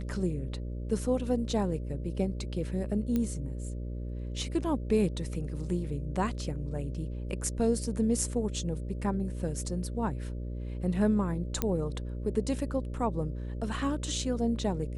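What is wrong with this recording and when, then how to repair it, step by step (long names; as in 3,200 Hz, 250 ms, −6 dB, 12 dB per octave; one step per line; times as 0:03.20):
mains buzz 60 Hz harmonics 10 −36 dBFS
0:03.16: click −18 dBFS
0:11.62: click −13 dBFS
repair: click removal
hum removal 60 Hz, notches 10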